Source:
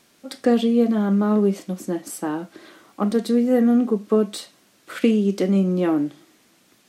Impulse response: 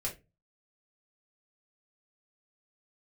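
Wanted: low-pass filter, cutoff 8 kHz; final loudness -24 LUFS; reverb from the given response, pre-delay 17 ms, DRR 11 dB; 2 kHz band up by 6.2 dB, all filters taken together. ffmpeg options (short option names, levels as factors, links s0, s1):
-filter_complex "[0:a]lowpass=8000,equalizer=f=2000:t=o:g=8,asplit=2[s0][s1];[1:a]atrim=start_sample=2205,adelay=17[s2];[s1][s2]afir=irnorm=-1:irlink=0,volume=0.224[s3];[s0][s3]amix=inputs=2:normalize=0,volume=0.631"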